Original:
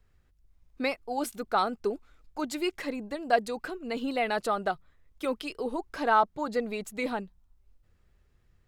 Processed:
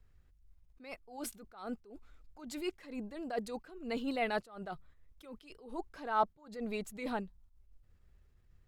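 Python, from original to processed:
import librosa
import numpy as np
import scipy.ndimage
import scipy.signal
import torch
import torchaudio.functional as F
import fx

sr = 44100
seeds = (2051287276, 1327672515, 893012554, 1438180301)

y = fx.low_shelf(x, sr, hz=130.0, db=6.5)
y = fx.attack_slew(y, sr, db_per_s=110.0)
y = y * 10.0 ** (-4.0 / 20.0)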